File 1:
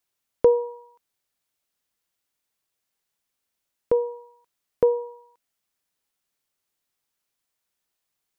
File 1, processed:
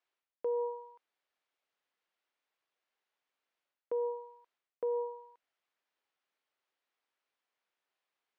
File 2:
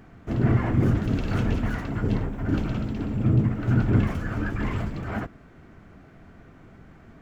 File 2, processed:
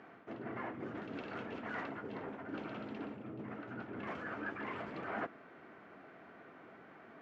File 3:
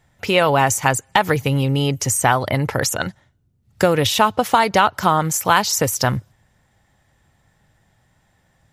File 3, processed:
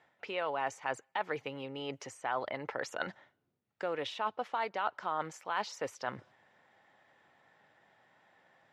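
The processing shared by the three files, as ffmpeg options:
-af "areverse,acompressor=threshold=-30dB:ratio=12,areverse,highpass=390,lowpass=2900"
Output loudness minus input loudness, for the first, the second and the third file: −13.5, −18.0, −19.5 LU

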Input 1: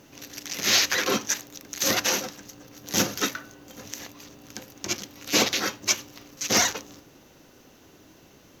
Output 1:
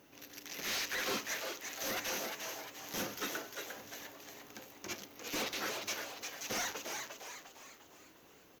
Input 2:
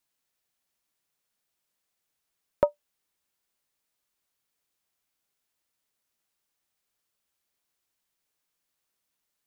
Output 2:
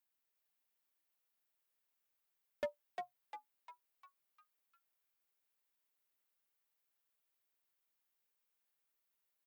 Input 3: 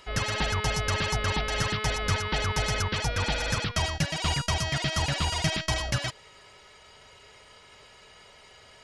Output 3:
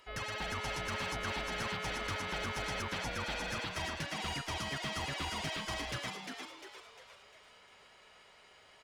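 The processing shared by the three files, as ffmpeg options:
-filter_complex "[0:a]aemphasis=mode=production:type=50fm,acrusher=bits=8:mode=log:mix=0:aa=0.000001,asoftclip=type=tanh:threshold=-16dB,bass=frequency=250:gain=-6,treble=frequency=4000:gain=-13,asoftclip=type=hard:threshold=-24.5dB,asplit=2[link_01][link_02];[link_02]asplit=6[link_03][link_04][link_05][link_06][link_07][link_08];[link_03]adelay=351,afreqshift=130,volume=-5dB[link_09];[link_04]adelay=702,afreqshift=260,volume=-11.7dB[link_10];[link_05]adelay=1053,afreqshift=390,volume=-18.5dB[link_11];[link_06]adelay=1404,afreqshift=520,volume=-25.2dB[link_12];[link_07]adelay=1755,afreqshift=650,volume=-32dB[link_13];[link_08]adelay=2106,afreqshift=780,volume=-38.7dB[link_14];[link_09][link_10][link_11][link_12][link_13][link_14]amix=inputs=6:normalize=0[link_15];[link_01][link_15]amix=inputs=2:normalize=0,volume=-8dB"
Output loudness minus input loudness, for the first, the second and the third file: −15.0, −18.0, −9.5 LU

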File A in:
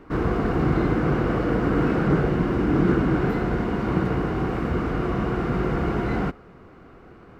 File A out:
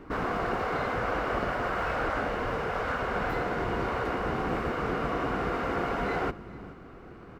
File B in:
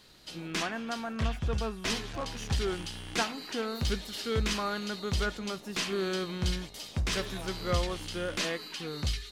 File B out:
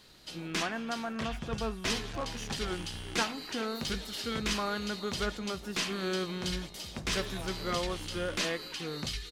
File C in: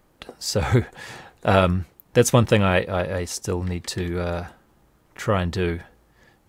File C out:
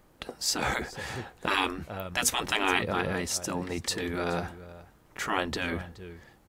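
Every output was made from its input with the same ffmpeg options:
-af "aecho=1:1:423:0.0944,afftfilt=real='re*lt(hypot(re,im),0.282)':imag='im*lt(hypot(re,im),0.282)':win_size=1024:overlap=0.75"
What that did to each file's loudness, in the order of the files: −7.0, −1.0, −7.0 LU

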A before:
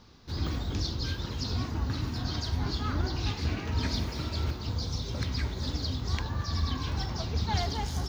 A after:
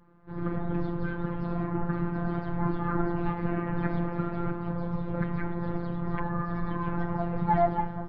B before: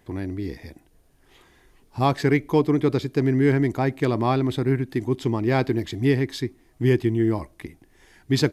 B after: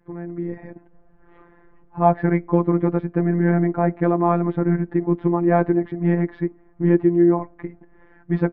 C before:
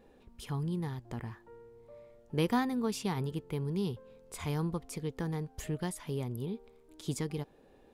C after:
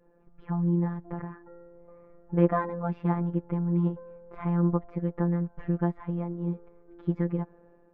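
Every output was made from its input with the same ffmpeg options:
-af "lowpass=frequency=1600:width=0.5412,lowpass=frequency=1600:width=1.3066,adynamicequalizer=threshold=0.00708:dfrequency=700:dqfactor=4.3:tfrequency=700:tqfactor=4.3:attack=5:release=100:ratio=0.375:range=2:mode=boostabove:tftype=bell,dynaudnorm=framelen=170:gausssize=5:maxgain=8dB,afftfilt=real='hypot(re,im)*cos(PI*b)':imag='0':win_size=1024:overlap=0.75,volume=2dB"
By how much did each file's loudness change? +1.5, +2.5, +6.5 LU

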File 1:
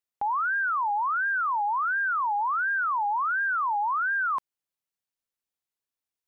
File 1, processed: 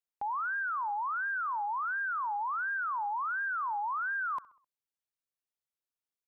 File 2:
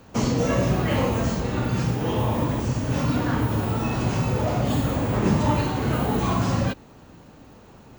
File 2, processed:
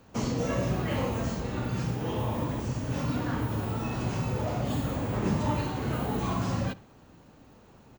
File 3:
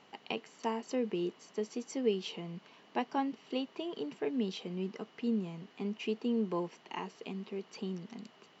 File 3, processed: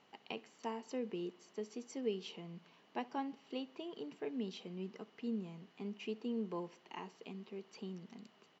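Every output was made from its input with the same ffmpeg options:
-filter_complex "[0:a]asplit=2[link_01][link_02];[link_02]adelay=65,lowpass=frequency=4100:poles=1,volume=-21dB,asplit=2[link_03][link_04];[link_04]adelay=65,lowpass=frequency=4100:poles=1,volume=0.51,asplit=2[link_05][link_06];[link_06]adelay=65,lowpass=frequency=4100:poles=1,volume=0.51,asplit=2[link_07][link_08];[link_08]adelay=65,lowpass=frequency=4100:poles=1,volume=0.51[link_09];[link_01][link_03][link_05][link_07][link_09]amix=inputs=5:normalize=0,volume=-7dB"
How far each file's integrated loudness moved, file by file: −7.0, −7.0, −7.0 LU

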